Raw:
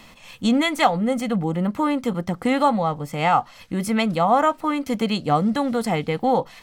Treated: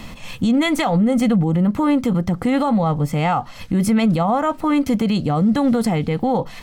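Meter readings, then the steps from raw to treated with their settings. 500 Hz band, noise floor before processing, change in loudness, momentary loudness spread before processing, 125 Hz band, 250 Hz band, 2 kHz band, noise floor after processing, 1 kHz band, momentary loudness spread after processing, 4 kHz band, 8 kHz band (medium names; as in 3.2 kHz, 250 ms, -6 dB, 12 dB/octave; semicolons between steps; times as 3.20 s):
+1.0 dB, -47 dBFS, +3.0 dB, 6 LU, +7.5 dB, +5.5 dB, -0.5 dB, -37 dBFS, -2.0 dB, 4 LU, -0.5 dB, +2.5 dB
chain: bass shelf 280 Hz +11 dB; in parallel at -1 dB: compression, threshold -26 dBFS, peak gain reduction 15.5 dB; on the sum: peak limiter -12 dBFS, peak gain reduction 10.5 dB; trim +1.5 dB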